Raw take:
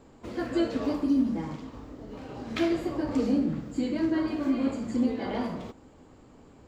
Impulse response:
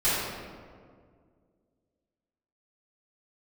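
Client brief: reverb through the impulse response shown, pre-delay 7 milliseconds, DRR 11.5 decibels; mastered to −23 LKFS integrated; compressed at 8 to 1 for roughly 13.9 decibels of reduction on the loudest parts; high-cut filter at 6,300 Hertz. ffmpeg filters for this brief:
-filter_complex "[0:a]lowpass=6300,acompressor=threshold=-36dB:ratio=8,asplit=2[link_01][link_02];[1:a]atrim=start_sample=2205,adelay=7[link_03];[link_02][link_03]afir=irnorm=-1:irlink=0,volume=-26dB[link_04];[link_01][link_04]amix=inputs=2:normalize=0,volume=17dB"

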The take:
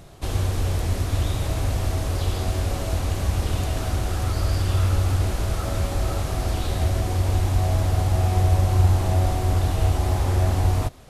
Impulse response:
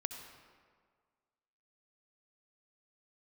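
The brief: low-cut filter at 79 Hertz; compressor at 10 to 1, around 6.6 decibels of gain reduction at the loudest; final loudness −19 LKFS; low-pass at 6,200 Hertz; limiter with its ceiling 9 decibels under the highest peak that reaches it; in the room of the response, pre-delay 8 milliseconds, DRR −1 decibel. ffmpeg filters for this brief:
-filter_complex "[0:a]highpass=79,lowpass=6200,acompressor=threshold=-22dB:ratio=10,alimiter=limit=-24dB:level=0:latency=1,asplit=2[link_01][link_02];[1:a]atrim=start_sample=2205,adelay=8[link_03];[link_02][link_03]afir=irnorm=-1:irlink=0,volume=1dB[link_04];[link_01][link_04]amix=inputs=2:normalize=0,volume=10dB"

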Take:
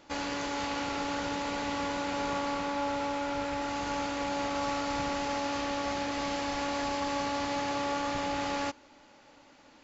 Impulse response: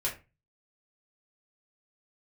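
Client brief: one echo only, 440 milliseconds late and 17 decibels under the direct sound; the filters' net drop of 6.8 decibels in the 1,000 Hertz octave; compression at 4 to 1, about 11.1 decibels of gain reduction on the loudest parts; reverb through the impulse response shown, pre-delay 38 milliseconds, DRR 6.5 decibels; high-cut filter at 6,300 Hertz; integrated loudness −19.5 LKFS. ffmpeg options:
-filter_complex "[0:a]lowpass=6300,equalizer=frequency=1000:width_type=o:gain=-8.5,acompressor=threshold=-45dB:ratio=4,aecho=1:1:440:0.141,asplit=2[link_01][link_02];[1:a]atrim=start_sample=2205,adelay=38[link_03];[link_02][link_03]afir=irnorm=-1:irlink=0,volume=-12dB[link_04];[link_01][link_04]amix=inputs=2:normalize=0,volume=26.5dB"

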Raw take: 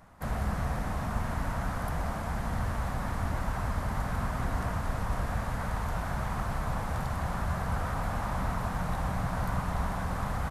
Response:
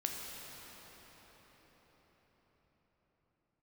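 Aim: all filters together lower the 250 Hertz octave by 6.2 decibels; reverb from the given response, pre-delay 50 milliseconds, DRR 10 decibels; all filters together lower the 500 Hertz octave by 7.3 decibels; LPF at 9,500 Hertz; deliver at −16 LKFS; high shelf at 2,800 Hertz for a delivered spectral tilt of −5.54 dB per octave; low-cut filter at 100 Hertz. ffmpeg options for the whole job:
-filter_complex "[0:a]highpass=100,lowpass=9500,equalizer=frequency=250:width_type=o:gain=-7.5,equalizer=frequency=500:width_type=o:gain=-8.5,highshelf=frequency=2800:gain=-6.5,asplit=2[link_01][link_02];[1:a]atrim=start_sample=2205,adelay=50[link_03];[link_02][link_03]afir=irnorm=-1:irlink=0,volume=-12.5dB[link_04];[link_01][link_04]amix=inputs=2:normalize=0,volume=21.5dB"

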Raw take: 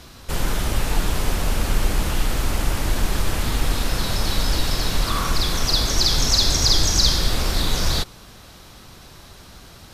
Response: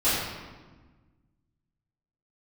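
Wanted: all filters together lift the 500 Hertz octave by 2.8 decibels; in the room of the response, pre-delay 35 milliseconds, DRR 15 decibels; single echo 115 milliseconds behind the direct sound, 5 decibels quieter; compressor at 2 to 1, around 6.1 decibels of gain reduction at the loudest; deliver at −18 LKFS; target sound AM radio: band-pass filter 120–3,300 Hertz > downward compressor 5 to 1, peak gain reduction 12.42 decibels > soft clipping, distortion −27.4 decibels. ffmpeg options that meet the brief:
-filter_complex "[0:a]equalizer=frequency=500:width_type=o:gain=3.5,acompressor=threshold=-24dB:ratio=2,aecho=1:1:115:0.562,asplit=2[link_01][link_02];[1:a]atrim=start_sample=2205,adelay=35[link_03];[link_02][link_03]afir=irnorm=-1:irlink=0,volume=-30dB[link_04];[link_01][link_04]amix=inputs=2:normalize=0,highpass=120,lowpass=3300,acompressor=threshold=-38dB:ratio=5,asoftclip=threshold=-28dB,volume=22.5dB"

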